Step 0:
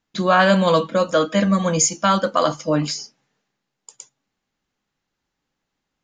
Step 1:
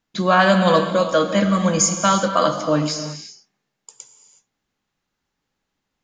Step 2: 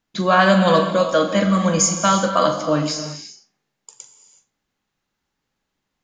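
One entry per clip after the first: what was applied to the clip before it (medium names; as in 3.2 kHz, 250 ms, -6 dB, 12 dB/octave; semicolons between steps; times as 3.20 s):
gated-style reverb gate 400 ms flat, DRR 6.5 dB
flutter echo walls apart 7.2 m, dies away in 0.23 s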